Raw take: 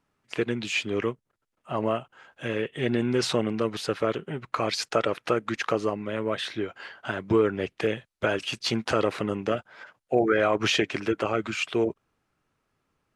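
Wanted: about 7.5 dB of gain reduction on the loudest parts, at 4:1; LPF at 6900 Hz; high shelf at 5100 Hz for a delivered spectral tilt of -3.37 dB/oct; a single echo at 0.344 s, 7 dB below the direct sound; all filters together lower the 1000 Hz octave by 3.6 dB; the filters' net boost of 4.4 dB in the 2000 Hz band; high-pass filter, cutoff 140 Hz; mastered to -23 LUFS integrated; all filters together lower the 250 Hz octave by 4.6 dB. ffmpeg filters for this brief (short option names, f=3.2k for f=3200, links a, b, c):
-af "highpass=140,lowpass=6.9k,equalizer=f=250:t=o:g=-5.5,equalizer=f=1k:t=o:g=-8.5,equalizer=f=2k:t=o:g=7.5,highshelf=f=5.1k:g=6,acompressor=threshold=-26dB:ratio=4,aecho=1:1:344:0.447,volume=8dB"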